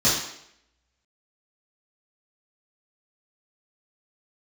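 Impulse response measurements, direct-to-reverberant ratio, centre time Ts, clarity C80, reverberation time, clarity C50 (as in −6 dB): −11.0 dB, 52 ms, 6.0 dB, 0.75 s, 2.5 dB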